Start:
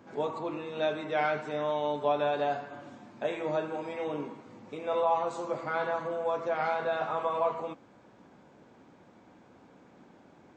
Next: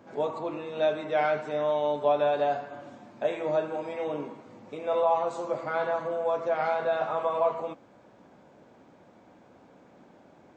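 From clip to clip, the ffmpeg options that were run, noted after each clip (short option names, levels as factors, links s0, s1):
-af "equalizer=f=610:w=2.3:g=5"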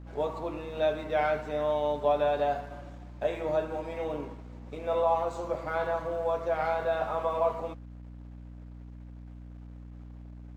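-af "aeval=exprs='sgn(val(0))*max(abs(val(0))-0.00158,0)':c=same,aeval=exprs='val(0)+0.00794*(sin(2*PI*60*n/s)+sin(2*PI*2*60*n/s)/2+sin(2*PI*3*60*n/s)/3+sin(2*PI*4*60*n/s)/4+sin(2*PI*5*60*n/s)/5)':c=same,volume=0.841"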